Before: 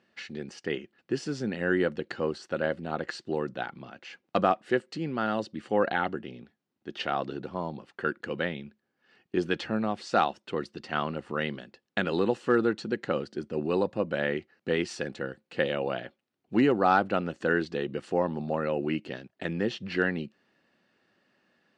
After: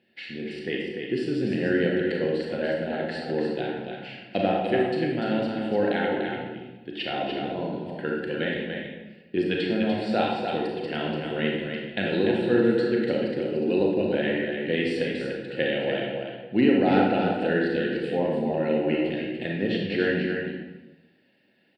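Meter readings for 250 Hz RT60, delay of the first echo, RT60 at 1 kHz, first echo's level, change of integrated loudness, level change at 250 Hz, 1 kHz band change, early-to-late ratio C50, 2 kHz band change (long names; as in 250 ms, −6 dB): 1.1 s, 293 ms, 1.1 s, −5.5 dB, +4.0 dB, +6.0 dB, −1.0 dB, −1.0 dB, +2.0 dB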